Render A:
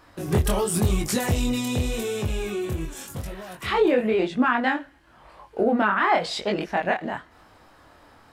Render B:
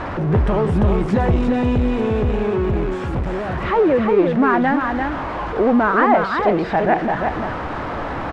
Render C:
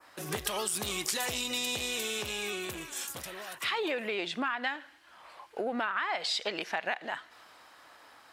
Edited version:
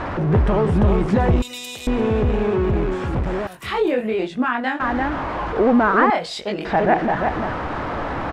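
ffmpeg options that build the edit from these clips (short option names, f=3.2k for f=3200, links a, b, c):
-filter_complex "[0:a]asplit=2[a][b];[1:a]asplit=4[c][d][e][f];[c]atrim=end=1.422[g];[2:a]atrim=start=1.418:end=1.872[h];[d]atrim=start=1.868:end=3.472[i];[a]atrim=start=3.468:end=4.802[j];[e]atrim=start=4.798:end=6.102[k];[b]atrim=start=6.098:end=6.652[l];[f]atrim=start=6.648[m];[g][h]acrossfade=d=0.004:c1=hsin:c2=hsin[n];[n][i]acrossfade=d=0.004:c1=hsin:c2=hsin[o];[o][j]acrossfade=d=0.004:c1=hsin:c2=hsin[p];[p][k]acrossfade=d=0.004:c1=hsin:c2=hsin[q];[q][l]acrossfade=d=0.004:c1=hsin:c2=hsin[r];[r][m]acrossfade=d=0.004:c1=hsin:c2=hsin"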